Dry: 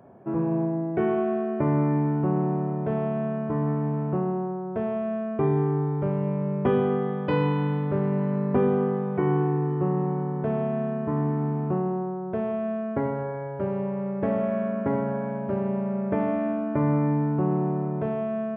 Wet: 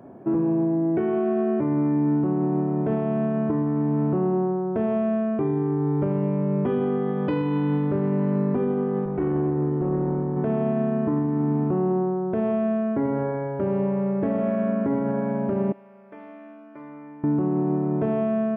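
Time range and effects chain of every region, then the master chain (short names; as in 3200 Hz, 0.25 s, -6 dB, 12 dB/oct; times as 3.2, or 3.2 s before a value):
9.05–10.37 high shelf 2100 Hz -9 dB + tube stage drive 18 dB, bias 0.65 + doubler 13 ms -14 dB
15.72–17.24 LPF 2200 Hz 6 dB/oct + differentiator
whole clip: bell 290 Hz +9 dB 0.69 oct; compressor, threshold -20 dBFS; limiter -19 dBFS; gain +3 dB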